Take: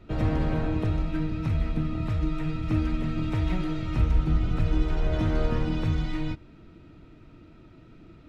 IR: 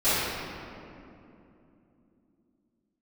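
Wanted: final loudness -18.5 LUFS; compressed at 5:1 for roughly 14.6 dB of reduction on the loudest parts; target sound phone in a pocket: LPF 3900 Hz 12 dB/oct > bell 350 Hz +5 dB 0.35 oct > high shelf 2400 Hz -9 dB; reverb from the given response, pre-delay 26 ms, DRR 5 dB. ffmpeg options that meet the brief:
-filter_complex "[0:a]acompressor=threshold=-35dB:ratio=5,asplit=2[a][b];[1:a]atrim=start_sample=2205,adelay=26[c];[b][c]afir=irnorm=-1:irlink=0,volume=-22dB[d];[a][d]amix=inputs=2:normalize=0,lowpass=3.9k,equalizer=f=350:t=o:w=0.35:g=5,highshelf=f=2.4k:g=-9,volume=19dB"

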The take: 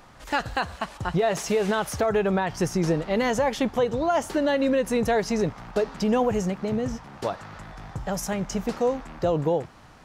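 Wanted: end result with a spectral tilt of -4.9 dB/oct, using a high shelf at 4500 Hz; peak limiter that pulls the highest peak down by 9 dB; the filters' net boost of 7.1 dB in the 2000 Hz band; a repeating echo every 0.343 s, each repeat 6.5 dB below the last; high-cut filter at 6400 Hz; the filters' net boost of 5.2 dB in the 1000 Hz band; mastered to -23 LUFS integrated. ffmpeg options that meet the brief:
-af "lowpass=6.4k,equalizer=f=1k:t=o:g=5.5,equalizer=f=2k:t=o:g=6,highshelf=f=4.5k:g=6,alimiter=limit=-15.5dB:level=0:latency=1,aecho=1:1:343|686|1029|1372|1715|2058:0.473|0.222|0.105|0.0491|0.0231|0.0109,volume=2dB"

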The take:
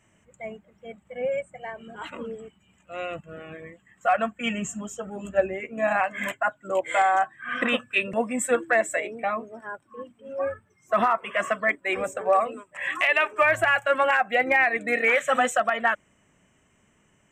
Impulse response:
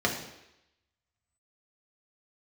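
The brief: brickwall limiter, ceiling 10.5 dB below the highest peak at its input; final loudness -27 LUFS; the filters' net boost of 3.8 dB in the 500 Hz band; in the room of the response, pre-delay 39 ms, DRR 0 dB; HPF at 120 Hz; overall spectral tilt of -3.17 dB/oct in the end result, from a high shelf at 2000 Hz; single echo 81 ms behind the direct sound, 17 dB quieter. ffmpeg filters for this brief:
-filter_complex "[0:a]highpass=120,equalizer=f=500:t=o:g=4,highshelf=f=2k:g=6.5,alimiter=limit=-16dB:level=0:latency=1,aecho=1:1:81:0.141,asplit=2[a][b];[1:a]atrim=start_sample=2205,adelay=39[c];[b][c]afir=irnorm=-1:irlink=0,volume=-11.5dB[d];[a][d]amix=inputs=2:normalize=0,volume=-3.5dB"

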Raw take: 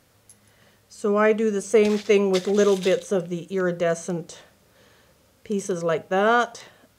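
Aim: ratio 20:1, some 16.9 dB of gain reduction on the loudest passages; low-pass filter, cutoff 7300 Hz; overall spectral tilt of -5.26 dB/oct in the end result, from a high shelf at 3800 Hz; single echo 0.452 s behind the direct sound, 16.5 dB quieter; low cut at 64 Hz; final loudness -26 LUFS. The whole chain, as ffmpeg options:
-af "highpass=64,lowpass=7.3k,highshelf=f=3.8k:g=-4,acompressor=threshold=-30dB:ratio=20,aecho=1:1:452:0.15,volume=9.5dB"

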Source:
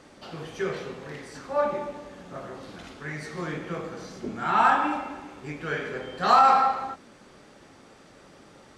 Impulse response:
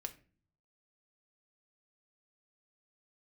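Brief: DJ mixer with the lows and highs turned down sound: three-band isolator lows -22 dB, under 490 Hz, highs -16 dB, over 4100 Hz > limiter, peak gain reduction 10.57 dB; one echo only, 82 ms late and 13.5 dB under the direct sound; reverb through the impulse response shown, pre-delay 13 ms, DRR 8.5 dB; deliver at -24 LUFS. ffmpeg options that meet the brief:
-filter_complex "[0:a]aecho=1:1:82:0.211,asplit=2[a][b];[1:a]atrim=start_sample=2205,adelay=13[c];[b][c]afir=irnorm=-1:irlink=0,volume=-6dB[d];[a][d]amix=inputs=2:normalize=0,acrossover=split=490 4100:gain=0.0794 1 0.158[e][f][g];[e][f][g]amix=inputs=3:normalize=0,volume=7.5dB,alimiter=limit=-10.5dB:level=0:latency=1"

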